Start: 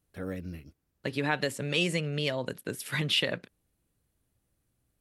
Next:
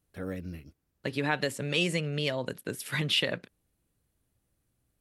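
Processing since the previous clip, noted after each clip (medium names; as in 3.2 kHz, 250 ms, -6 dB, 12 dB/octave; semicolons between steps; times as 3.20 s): no audible change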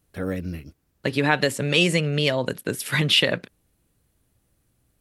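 de-esser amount 45%; trim +8.5 dB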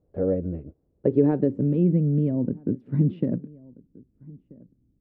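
echo from a far wall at 220 m, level -23 dB; low-pass sweep 540 Hz -> 260 Hz, 0.79–1.76 s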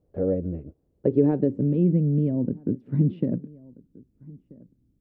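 dynamic bell 1.4 kHz, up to -4 dB, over -44 dBFS, Q 0.94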